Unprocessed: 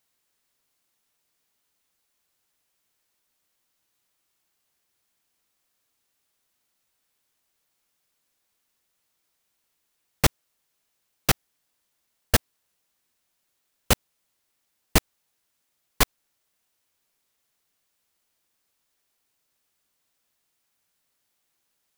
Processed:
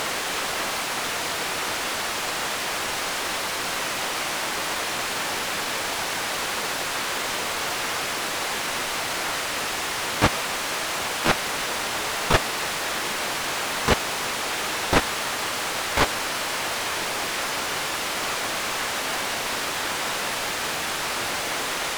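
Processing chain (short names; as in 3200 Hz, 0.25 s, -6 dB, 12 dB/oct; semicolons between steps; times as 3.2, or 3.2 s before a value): delta modulation 64 kbps, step -20 dBFS; harmoniser -5 st -5 dB, +12 st -1 dB; overdrive pedal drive 13 dB, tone 1200 Hz, clips at 0 dBFS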